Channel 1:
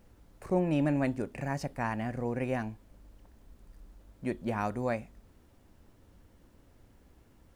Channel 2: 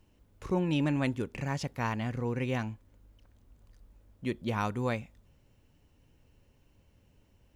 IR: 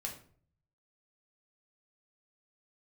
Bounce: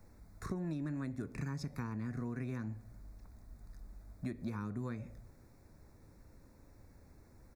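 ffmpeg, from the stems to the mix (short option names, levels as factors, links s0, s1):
-filter_complex "[0:a]volume=0.75[s0];[1:a]adelay=0.9,volume=0.944,asplit=2[s1][s2];[s2]volume=0.266[s3];[2:a]atrim=start_sample=2205[s4];[s3][s4]afir=irnorm=-1:irlink=0[s5];[s0][s1][s5]amix=inputs=3:normalize=0,acrossover=split=120|500[s6][s7][s8];[s6]acompressor=threshold=0.00562:ratio=4[s9];[s7]acompressor=threshold=0.0316:ratio=4[s10];[s8]acompressor=threshold=0.00794:ratio=4[s11];[s9][s10][s11]amix=inputs=3:normalize=0,asuperstop=centerf=3000:order=4:qfactor=2,acompressor=threshold=0.0158:ratio=6"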